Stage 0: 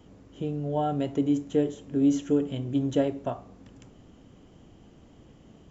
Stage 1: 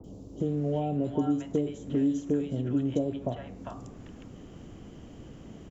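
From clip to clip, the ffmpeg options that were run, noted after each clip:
ffmpeg -i in.wav -filter_complex "[0:a]acrossover=split=240|1300[link_01][link_02][link_03];[link_01]acompressor=threshold=-40dB:ratio=4[link_04];[link_02]acompressor=threshold=-36dB:ratio=4[link_05];[link_03]acompressor=threshold=-59dB:ratio=4[link_06];[link_04][link_05][link_06]amix=inputs=3:normalize=0,acrossover=split=850|3800[link_07][link_08][link_09];[link_09]adelay=40[link_10];[link_08]adelay=400[link_11];[link_07][link_11][link_10]amix=inputs=3:normalize=0,volume=7dB" out.wav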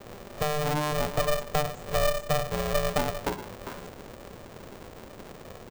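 ffmpeg -i in.wav -af "asuperstop=centerf=3200:order=8:qfactor=0.58,aeval=exprs='val(0)*sgn(sin(2*PI*300*n/s))':channel_layout=same,volume=1.5dB" out.wav

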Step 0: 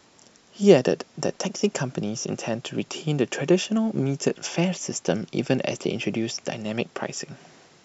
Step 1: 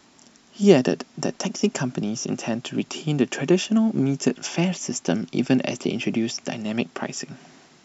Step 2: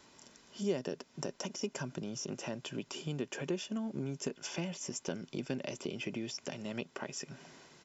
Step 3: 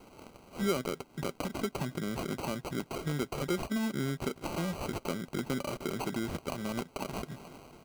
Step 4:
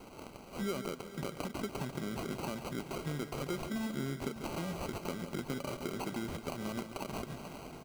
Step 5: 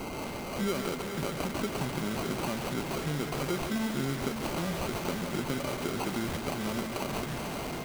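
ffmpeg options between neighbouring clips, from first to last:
ffmpeg -i in.wav -af "equalizer=frequency=100:width_type=o:width=0.33:gain=-6,equalizer=frequency=250:width_type=o:width=0.33:gain=7,equalizer=frequency=500:width_type=o:width=0.33:gain=-7,volume=1dB" out.wav
ffmpeg -i in.wav -af "aecho=1:1:2:0.38,acompressor=threshold=-36dB:ratio=2,volume=-5.5dB" out.wav
ffmpeg -i in.wav -filter_complex "[0:a]asplit=2[link_01][link_02];[link_02]alimiter=level_in=8dB:limit=-24dB:level=0:latency=1,volume=-8dB,volume=0dB[link_03];[link_01][link_03]amix=inputs=2:normalize=0,acrusher=samples=25:mix=1:aa=0.000001" out.wav
ffmpeg -i in.wav -filter_complex "[0:a]acompressor=threshold=-44dB:ratio=2,asplit=2[link_01][link_02];[link_02]aecho=0:1:141|177|432|494|607:0.282|0.178|0.158|0.141|0.141[link_03];[link_01][link_03]amix=inputs=2:normalize=0,volume=3dB" out.wav
ffmpeg -i in.wav -filter_complex "[0:a]aeval=exprs='val(0)+0.5*0.00531*sgn(val(0))':channel_layout=same,aeval=exprs='val(0)+0.00126*sin(2*PI*2100*n/s)':channel_layout=same,asplit=2[link_01][link_02];[link_02]aeval=exprs='(mod(89.1*val(0)+1,2)-1)/89.1':channel_layout=same,volume=-3.5dB[link_03];[link_01][link_03]amix=inputs=2:normalize=0,volume=4dB" out.wav

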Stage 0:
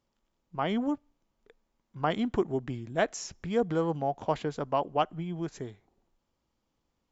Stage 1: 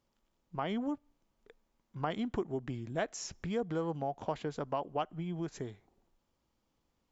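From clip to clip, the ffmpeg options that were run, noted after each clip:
ffmpeg -i in.wav -af "acompressor=threshold=-36dB:ratio=2" out.wav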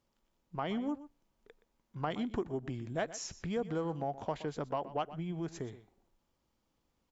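ffmpeg -i in.wav -filter_complex "[0:a]asplit=2[link_01][link_02];[link_02]asoftclip=type=tanh:threshold=-29dB,volume=-10dB[link_03];[link_01][link_03]amix=inputs=2:normalize=0,aecho=1:1:122:0.168,volume=-2.5dB" out.wav

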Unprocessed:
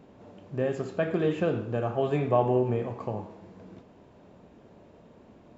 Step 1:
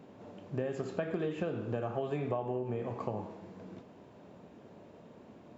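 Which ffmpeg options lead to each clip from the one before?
ffmpeg -i in.wav -af "highpass=97,acompressor=threshold=-30dB:ratio=16" out.wav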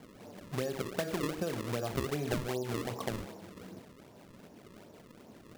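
ffmpeg -i in.wav -af "acrusher=samples=33:mix=1:aa=0.000001:lfo=1:lforange=52.8:lforate=2.6" out.wav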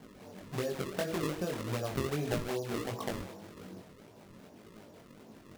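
ffmpeg -i in.wav -af "flanger=delay=18:depth=4.3:speed=1.7,volume=3dB" out.wav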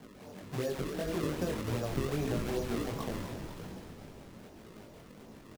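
ffmpeg -i in.wav -filter_complex "[0:a]acrossover=split=470[link_01][link_02];[link_02]alimiter=level_in=6dB:limit=-24dB:level=0:latency=1:release=71,volume=-6dB[link_03];[link_01][link_03]amix=inputs=2:normalize=0,asplit=9[link_04][link_05][link_06][link_07][link_08][link_09][link_10][link_11][link_12];[link_05]adelay=251,afreqshift=-89,volume=-8dB[link_13];[link_06]adelay=502,afreqshift=-178,volume=-12.2dB[link_14];[link_07]adelay=753,afreqshift=-267,volume=-16.3dB[link_15];[link_08]adelay=1004,afreqshift=-356,volume=-20.5dB[link_16];[link_09]adelay=1255,afreqshift=-445,volume=-24.6dB[link_17];[link_10]adelay=1506,afreqshift=-534,volume=-28.8dB[link_18];[link_11]adelay=1757,afreqshift=-623,volume=-32.9dB[link_19];[link_12]adelay=2008,afreqshift=-712,volume=-37.1dB[link_20];[link_04][link_13][link_14][link_15][link_16][link_17][link_18][link_19][link_20]amix=inputs=9:normalize=0,volume=1dB" out.wav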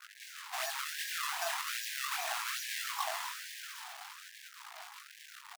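ffmpeg -i in.wav -af "acrusher=bits=7:mix=0:aa=0.5,afftfilt=real='re*gte(b*sr/1024,630*pow(1600/630,0.5+0.5*sin(2*PI*1.2*pts/sr)))':imag='im*gte(b*sr/1024,630*pow(1600/630,0.5+0.5*sin(2*PI*1.2*pts/sr)))':win_size=1024:overlap=0.75,volume=8dB" out.wav

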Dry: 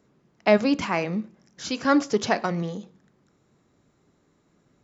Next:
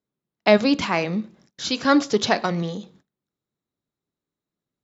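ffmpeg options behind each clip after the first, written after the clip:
ffmpeg -i in.wav -af "agate=range=-26dB:threshold=-55dB:ratio=16:detection=peak,equalizer=frequency=3800:width=2.4:gain=8,volume=2.5dB" out.wav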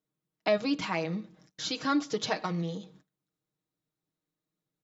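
ffmpeg -i in.wav -af "aecho=1:1:6.4:0.68,acompressor=threshold=-37dB:ratio=1.5,volume=-3.5dB" out.wav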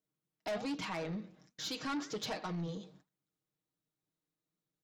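ffmpeg -i in.wav -af "flanger=delay=3.8:depth=9.9:regen=88:speed=1.3:shape=triangular,asoftclip=type=tanh:threshold=-34dB,volume=1dB" out.wav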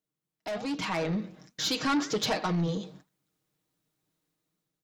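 ffmpeg -i in.wav -af "dynaudnorm=framelen=320:gausssize=5:maxgain=10.5dB" out.wav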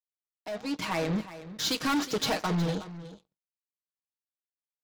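ffmpeg -i in.wav -af "aeval=exprs='0.0794*(cos(1*acos(clip(val(0)/0.0794,-1,1)))-cos(1*PI/2))+0.0112*(cos(7*acos(clip(val(0)/0.0794,-1,1)))-cos(7*PI/2))':channel_layout=same,aecho=1:1:365:0.188" out.wav

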